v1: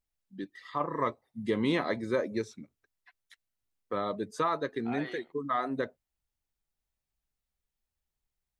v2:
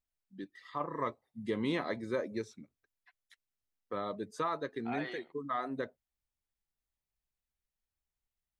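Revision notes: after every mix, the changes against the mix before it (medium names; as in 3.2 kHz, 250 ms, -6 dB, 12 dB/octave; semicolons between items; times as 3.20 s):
first voice -5.0 dB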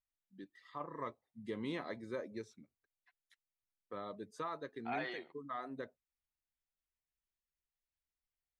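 first voice -7.5 dB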